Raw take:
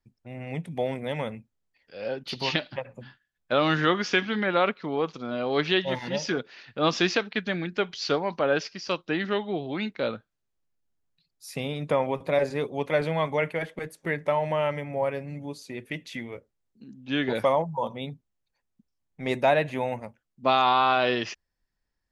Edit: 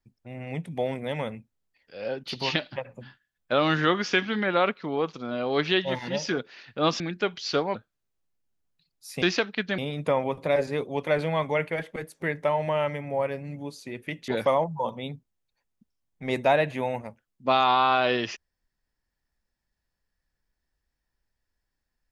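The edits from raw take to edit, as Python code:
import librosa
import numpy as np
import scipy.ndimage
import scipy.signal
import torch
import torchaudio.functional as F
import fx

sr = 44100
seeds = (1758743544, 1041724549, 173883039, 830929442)

y = fx.edit(x, sr, fx.move(start_s=7.0, length_s=0.56, to_s=11.61),
    fx.cut(start_s=8.31, length_s=1.83),
    fx.cut(start_s=16.11, length_s=1.15), tone=tone)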